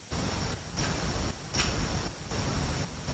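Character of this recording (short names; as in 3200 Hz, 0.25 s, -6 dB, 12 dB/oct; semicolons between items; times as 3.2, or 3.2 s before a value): a buzz of ramps at a fixed pitch in blocks of 8 samples; chopped level 1.3 Hz, depth 65%, duty 70%; a quantiser's noise floor 8-bit, dither triangular; Speex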